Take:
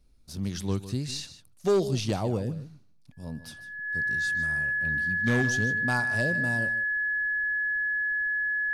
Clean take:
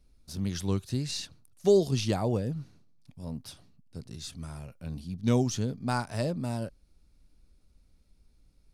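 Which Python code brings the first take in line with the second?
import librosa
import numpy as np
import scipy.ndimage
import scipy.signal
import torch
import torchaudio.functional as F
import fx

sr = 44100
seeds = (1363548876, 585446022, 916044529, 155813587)

y = fx.fix_declip(x, sr, threshold_db=-18.5)
y = fx.notch(y, sr, hz=1700.0, q=30.0)
y = fx.fix_echo_inverse(y, sr, delay_ms=152, level_db=-14.0)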